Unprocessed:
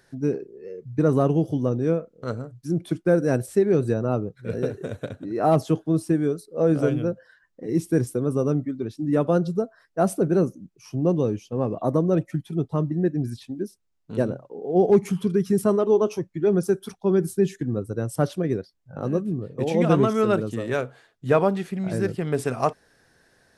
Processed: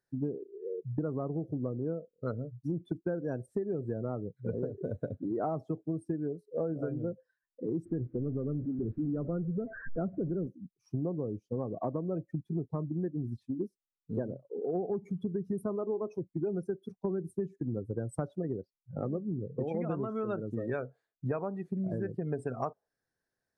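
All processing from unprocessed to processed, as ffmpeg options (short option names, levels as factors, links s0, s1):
-filter_complex "[0:a]asettb=1/sr,asplit=3[s0][s1][s2];[s0]atrim=end=7.854[s3];[s1]atrim=start=7.85:end=10.47,asetpts=PTS-STARTPTS,afade=t=in:d=0.004:c=qsin,afade=t=out:st=2.616:d=0.004:c=qsin,aeval=exprs='val(0)+0.5*0.0631*sgn(val(0))':c=same,lowpass=f=1600:w=0.5412,lowpass=f=1600:w=1.3066,equalizer=f=810:t=o:w=1.5:g=-12[s4];[s2]atrim=start=10.466[s5];[s3][s4]acrossfade=d=0.004:c1=hsin:c2=qsin[s6];[s6][s5]acrossfade=d=0.004:c1=qsin:c2=hsin,afftdn=nr=27:nf=-31,equalizer=f=2900:w=2.2:g=-6,acompressor=threshold=0.0316:ratio=12"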